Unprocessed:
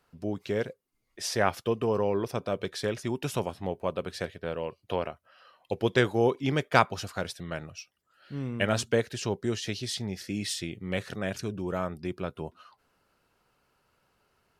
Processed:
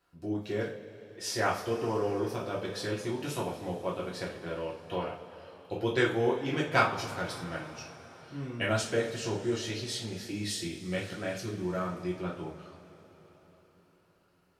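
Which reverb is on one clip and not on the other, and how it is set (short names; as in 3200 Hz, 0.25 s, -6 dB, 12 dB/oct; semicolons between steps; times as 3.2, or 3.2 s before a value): two-slope reverb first 0.35 s, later 4.7 s, from -21 dB, DRR -5 dB; gain -8 dB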